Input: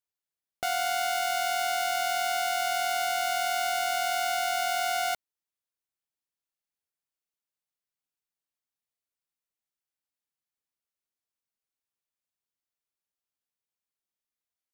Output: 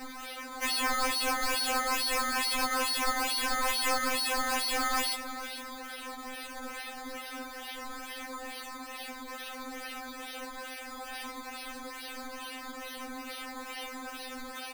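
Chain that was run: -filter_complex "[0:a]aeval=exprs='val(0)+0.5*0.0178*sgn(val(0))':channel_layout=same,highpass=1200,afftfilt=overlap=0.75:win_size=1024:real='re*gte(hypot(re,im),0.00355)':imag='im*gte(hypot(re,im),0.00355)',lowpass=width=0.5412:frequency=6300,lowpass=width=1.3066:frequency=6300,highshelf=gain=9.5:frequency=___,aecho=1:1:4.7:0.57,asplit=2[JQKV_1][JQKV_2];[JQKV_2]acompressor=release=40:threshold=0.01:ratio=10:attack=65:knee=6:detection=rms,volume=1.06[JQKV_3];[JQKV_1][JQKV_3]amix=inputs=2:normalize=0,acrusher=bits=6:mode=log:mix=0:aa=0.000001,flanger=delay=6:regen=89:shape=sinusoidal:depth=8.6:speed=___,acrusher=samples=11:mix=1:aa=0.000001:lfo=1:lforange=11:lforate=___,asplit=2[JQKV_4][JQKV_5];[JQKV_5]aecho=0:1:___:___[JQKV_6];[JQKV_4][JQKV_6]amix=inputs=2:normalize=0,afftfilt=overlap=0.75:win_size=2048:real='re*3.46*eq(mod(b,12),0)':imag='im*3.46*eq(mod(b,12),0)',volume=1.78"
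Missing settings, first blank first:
4500, 0.47, 2.3, 459, 0.168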